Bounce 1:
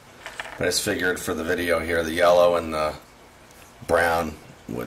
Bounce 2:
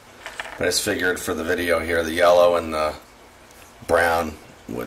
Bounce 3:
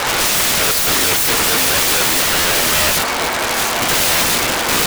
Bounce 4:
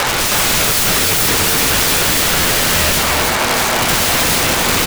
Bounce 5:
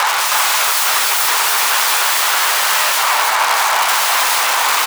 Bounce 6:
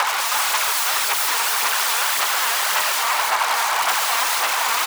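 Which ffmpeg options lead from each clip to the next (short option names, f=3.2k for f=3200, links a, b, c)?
-af "equalizer=f=150:t=o:w=0.45:g=-10,volume=2dB"
-filter_complex "[0:a]asplit=2[a][b];[b]highpass=f=720:p=1,volume=30dB,asoftclip=type=tanh:threshold=-4.5dB[c];[a][c]amix=inputs=2:normalize=0,lowpass=f=3.9k:p=1,volume=-6dB,acrusher=bits=8:dc=4:mix=0:aa=0.000001,aeval=exprs='(mod(9.44*val(0)+1,2)-1)/9.44':c=same,volume=9dB"
-filter_complex "[0:a]acrossover=split=200[a][b];[b]acompressor=threshold=-20dB:ratio=4[c];[a][c]amix=inputs=2:normalize=0,aecho=1:1:317:0.708,volume=5.5dB"
-af "highpass=f=950:t=q:w=2.3,volume=-1.5dB"
-af "aphaser=in_gain=1:out_gain=1:delay=4.4:decay=0.41:speed=1.8:type=sinusoidal,volume=-6.5dB"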